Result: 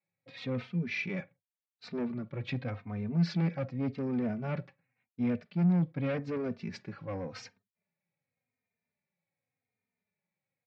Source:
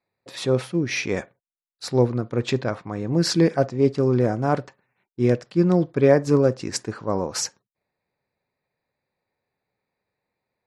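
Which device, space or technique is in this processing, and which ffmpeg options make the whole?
barber-pole flanger into a guitar amplifier: -filter_complex "[0:a]asplit=2[a][b];[b]adelay=3.1,afreqshift=-0.87[c];[a][c]amix=inputs=2:normalize=1,asoftclip=type=tanh:threshold=-20.5dB,highpass=97,equalizer=f=100:t=q:w=4:g=9,equalizer=f=170:t=q:w=4:g=10,equalizer=f=240:t=q:w=4:g=7,equalizer=f=340:t=q:w=4:g=-8,equalizer=f=1k:t=q:w=4:g=-5,equalizer=f=2.3k:t=q:w=4:g=8,lowpass=f=4.2k:w=0.5412,lowpass=f=4.2k:w=1.3066,volume=-8.5dB"

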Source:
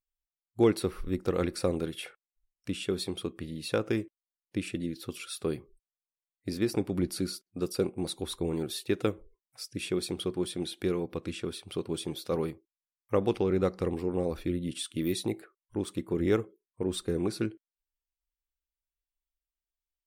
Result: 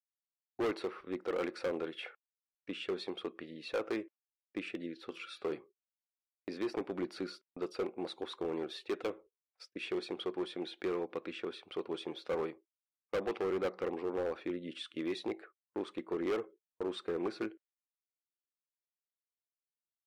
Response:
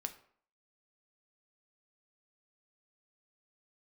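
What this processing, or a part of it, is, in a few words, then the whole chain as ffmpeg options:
walkie-talkie: -filter_complex "[0:a]asettb=1/sr,asplit=3[a][b][c];[a]atrim=end=5.024[d];[b]atrim=start=5.02:end=5.58,asetpts=PTS-STARTPTS,afade=t=in:d=0.004:c=qsin,afade=t=out:st=0.556:d=0.004:c=qsin,bandreject=f=166.7:t=h:w=4,bandreject=f=333.4:t=h:w=4,bandreject=f=500.1:t=h:w=4,bandreject=f=666.8:t=h:w=4,bandreject=f=833.5:t=h:w=4,bandreject=f=1.0002k:t=h:w=4,bandreject=f=1.1669k:t=h:w=4,bandreject=f=1.3336k:t=h:w=4,bandreject=f=1.5003k:t=h:w=4,bandreject=f=1.667k:t=h:w=4,bandreject=f=1.8337k:t=h:w=4,bandreject=f=2.0004k:t=h:w=4,bandreject=f=2.1671k:t=h:w=4,bandreject=f=2.3338k:t=h:w=4,bandreject=f=2.5005k:t=h:w=4,bandreject=f=2.6672k:t=h:w=4,bandreject=f=2.8339k:t=h:w=4,bandreject=f=3.0006k:t=h:w=4,bandreject=f=3.1673k:t=h:w=4,bandreject=f=3.334k:t=h:w=4,bandreject=f=3.5007k:t=h:w=4,bandreject=f=3.6674k:t=h:w=4,bandreject=f=3.8341k:t=h:w=4,bandreject=f=4.0008k:t=h:w=4,bandreject=f=4.1675k:t=h:w=4,bandreject=f=4.3342k:t=h:w=4,bandreject=f=4.5009k:t=h:w=4,bandreject=f=4.6676k:t=h:w=4,bandreject=f=4.8343k:t=h:w=4[e];[c]atrim=start=5.576[f];[d][e]acrossfade=d=0.004:c1=hsin:c2=qsin[g];[g][f]acrossfade=d=0.004:c1=qsin:c2=hsin,highpass=440,lowpass=2.5k,asoftclip=type=hard:threshold=-30.5dB,agate=range=-26dB:threshold=-56dB:ratio=16:detection=peak,volume=1dB"

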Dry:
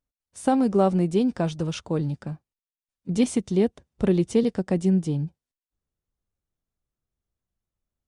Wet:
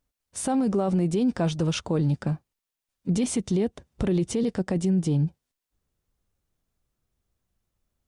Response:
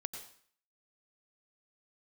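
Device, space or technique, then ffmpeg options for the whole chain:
stacked limiters: -af "alimiter=limit=-13.5dB:level=0:latency=1:release=136,alimiter=limit=-19.5dB:level=0:latency=1:release=12,alimiter=level_in=1dB:limit=-24dB:level=0:latency=1:release=262,volume=-1dB,volume=8dB"

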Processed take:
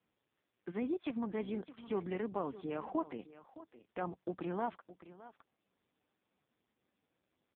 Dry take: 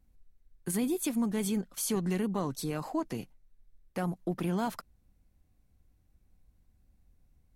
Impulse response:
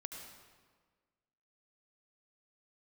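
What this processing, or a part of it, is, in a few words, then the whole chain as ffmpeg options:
satellite phone: -filter_complex "[0:a]asettb=1/sr,asplit=3[a][b][c];[a]atrim=end=1.524[d];[b]atrim=start=1.52:end=2.13,asetpts=PTS-STARTPTS,afade=t=in:d=0.004:c=qsin,afade=t=out:st=0.606:d=0.004:c=qsin,acrossover=split=5200[e][f];[f]acompressor=threshold=-44dB:ratio=4:attack=1:release=60[g];[e][g]amix=inputs=2:normalize=0[h];[c]atrim=start=2.126[i];[d][h]acrossfade=d=0.004:c1=hsin:c2=qsin[j];[j][i]acrossfade=d=0.004:c1=qsin:c2=hsin,highpass=310,lowpass=3.2k,aecho=1:1:615:0.168,volume=-1.5dB" -ar 8000 -c:a libopencore_amrnb -b:a 4750

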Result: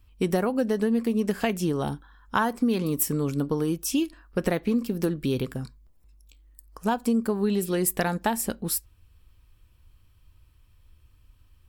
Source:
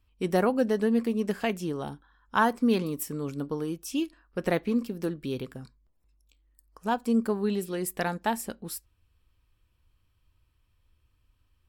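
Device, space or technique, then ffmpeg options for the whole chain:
ASMR close-microphone chain: -af "lowshelf=f=160:g=5.5,acompressor=threshold=-27dB:ratio=6,highshelf=f=7.4k:g=5.5,volume=6.5dB"

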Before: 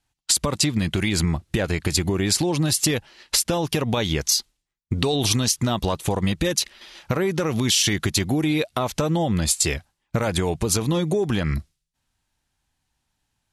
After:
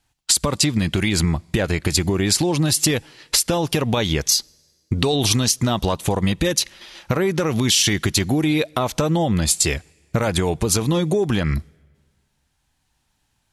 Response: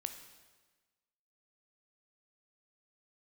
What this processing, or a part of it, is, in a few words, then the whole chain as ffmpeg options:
ducked reverb: -filter_complex "[0:a]asplit=3[a][b][c];[1:a]atrim=start_sample=2205[d];[b][d]afir=irnorm=-1:irlink=0[e];[c]apad=whole_len=596379[f];[e][f]sidechaincompress=threshold=-37dB:ratio=6:attack=16:release=1060,volume=-2dB[g];[a][g]amix=inputs=2:normalize=0,volume=2dB"

